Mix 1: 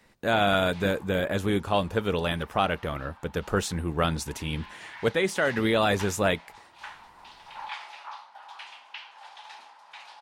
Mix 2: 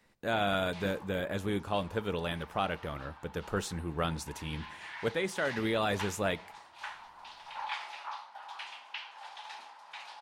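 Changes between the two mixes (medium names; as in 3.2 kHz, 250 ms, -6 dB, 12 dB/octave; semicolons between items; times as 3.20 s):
speech -8.5 dB; reverb: on, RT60 0.40 s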